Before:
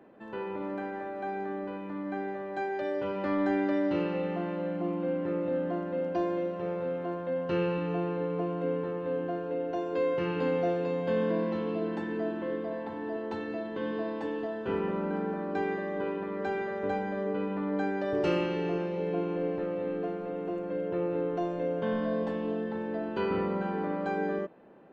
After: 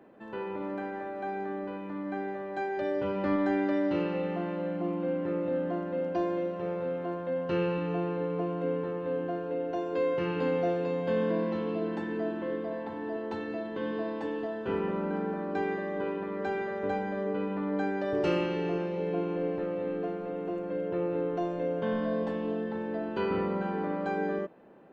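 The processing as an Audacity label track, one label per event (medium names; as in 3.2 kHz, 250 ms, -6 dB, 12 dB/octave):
2.770000	3.360000	bass shelf 240 Hz +6.5 dB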